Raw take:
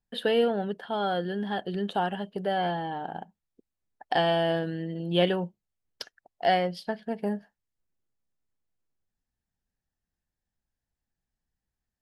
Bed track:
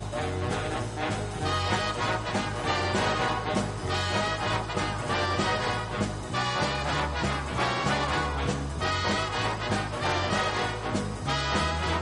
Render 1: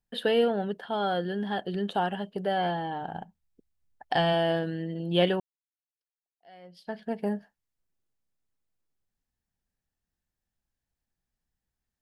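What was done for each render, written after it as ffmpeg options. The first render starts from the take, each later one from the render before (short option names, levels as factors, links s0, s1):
-filter_complex "[0:a]asplit=3[s0][s1][s2];[s0]afade=t=out:st=3:d=0.02[s3];[s1]asubboost=boost=3.5:cutoff=160,afade=t=in:st=3:d=0.02,afade=t=out:st=4.32:d=0.02[s4];[s2]afade=t=in:st=4.32:d=0.02[s5];[s3][s4][s5]amix=inputs=3:normalize=0,asplit=2[s6][s7];[s6]atrim=end=5.4,asetpts=PTS-STARTPTS,afade=t=out:st=5.396:d=0.004:c=hsin[s8];[s7]atrim=start=5.4,asetpts=PTS-STARTPTS,afade=t=in:d=1.58:c=exp[s9];[s8][s9]concat=n=2:v=0:a=1"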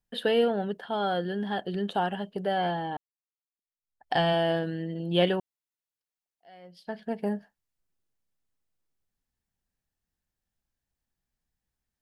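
-filter_complex "[0:a]asplit=2[s0][s1];[s0]atrim=end=2.97,asetpts=PTS-STARTPTS,afade=t=out:st=2.966:d=0.004:c=hsin[s2];[s1]atrim=start=2.97,asetpts=PTS-STARTPTS,afade=t=in:d=1.16:c=exp[s3];[s2][s3]concat=n=2:v=0:a=1"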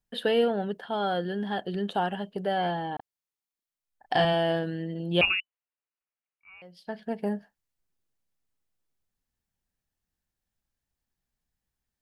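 -filter_complex "[0:a]asettb=1/sr,asplit=3[s0][s1][s2];[s0]atrim=end=2.964[s3];[s1]atrim=start=2.96:end=4.25,asetpts=PTS-STARTPTS,afade=t=in:d=0.004:c=qsin,afade=t=out:st=1.286:d=0.004:c=qsin,asplit=2[s4][s5];[s5]adelay=34,volume=0.708[s6];[s4][s6]amix=inputs=2:normalize=0,atrim=end_sample=56889[s7];[s2]atrim=start=4.246[s8];[s3][s7]acrossfade=d=0.004:c1=hsin:c2=qsin[s9];[s9][s8]acrossfade=d=0.004:c1=qsin:c2=hsin,asettb=1/sr,asplit=3[s10][s11][s12];[s10]atrim=end=5.214[s13];[s11]atrim=start=5.21:end=6.62,asetpts=PTS-STARTPTS,afade=t=in:d=0.004:c=qsin,afade=t=out:st=1.406:d=0.004:c=qsin,lowpass=f=2600:t=q:w=0.5098,lowpass=f=2600:t=q:w=0.6013,lowpass=f=2600:t=q:w=0.9,lowpass=f=2600:t=q:w=2.563,afreqshift=-3000[s14];[s12]atrim=start=6.616[s15];[s13][s14]acrossfade=d=0.004:c1=hsin:c2=qsin[s16];[s16][s15]acrossfade=d=0.004:c1=qsin:c2=hsin"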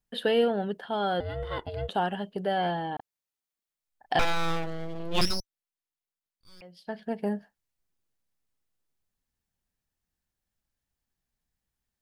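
-filter_complex "[0:a]asettb=1/sr,asplit=3[s0][s1][s2];[s0]atrim=end=1.204[s3];[s1]atrim=start=1.2:end=1.89,asetpts=PTS-STARTPTS,afade=t=in:d=0.004:c=qsin,afade=t=out:st=0.686:d=0.004:c=qsin,aeval=exprs='val(0)*sin(2*PI*270*n/s)':c=same[s4];[s2]atrim=start=1.886[s5];[s3][s4]acrossfade=d=0.004:c1=hsin:c2=qsin[s6];[s6][s5]acrossfade=d=0.004:c1=qsin:c2=hsin,asettb=1/sr,asplit=3[s7][s8][s9];[s7]atrim=end=4.194[s10];[s8]atrim=start=4.19:end=6.61,asetpts=PTS-STARTPTS,afade=t=in:d=0.004:c=qsin,afade=t=out:st=2.416:d=0.004:c=qsin,aeval=exprs='abs(val(0))':c=same[s11];[s9]atrim=start=6.606[s12];[s10][s11]acrossfade=d=0.004:c1=hsin:c2=qsin[s13];[s13][s12]acrossfade=d=0.004:c1=qsin:c2=hsin"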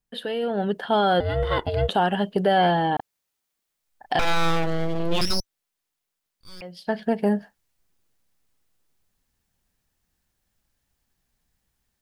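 -af "alimiter=limit=0.0841:level=0:latency=1:release=198,dynaudnorm=f=400:g=3:m=3.35"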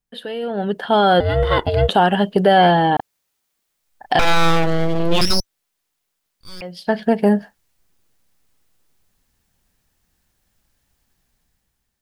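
-af "dynaudnorm=f=220:g=7:m=2.37"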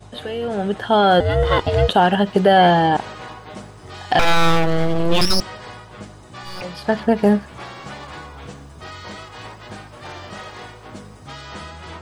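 -filter_complex "[1:a]volume=0.398[s0];[0:a][s0]amix=inputs=2:normalize=0"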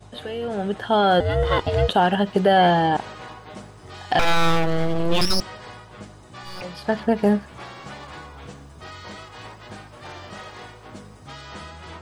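-af "volume=0.668"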